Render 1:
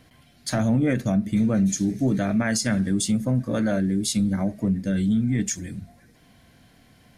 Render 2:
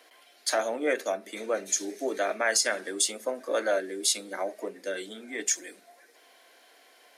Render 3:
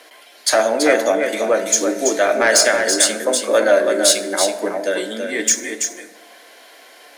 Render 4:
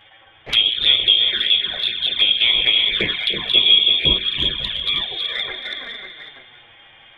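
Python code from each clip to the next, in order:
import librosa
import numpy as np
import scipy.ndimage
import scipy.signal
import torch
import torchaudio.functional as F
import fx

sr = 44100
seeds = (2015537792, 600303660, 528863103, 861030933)

y1 = scipy.signal.sosfilt(scipy.signal.butter(6, 380.0, 'highpass', fs=sr, output='sos'), x)
y1 = F.gain(torch.from_numpy(y1), 2.0).numpy()
y2 = fx.fold_sine(y1, sr, drive_db=5, ceiling_db=-9.0)
y2 = y2 + 10.0 ** (-6.0 / 20.0) * np.pad(y2, (int(331 * sr / 1000.0), 0))[:len(y2)]
y2 = fx.rev_fdn(y2, sr, rt60_s=1.4, lf_ratio=0.8, hf_ratio=0.45, size_ms=10.0, drr_db=9.0)
y2 = F.gain(torch.from_numpy(y2), 3.0).numpy()
y3 = fx.echo_multitap(y2, sr, ms=(96, 297, 343, 374, 449, 547), db=(-19.5, -16.5, -17.0, -10.5, -15.0, -9.0))
y3 = fx.freq_invert(y3, sr, carrier_hz=3900)
y3 = fx.env_flanger(y3, sr, rest_ms=10.0, full_db=-12.0)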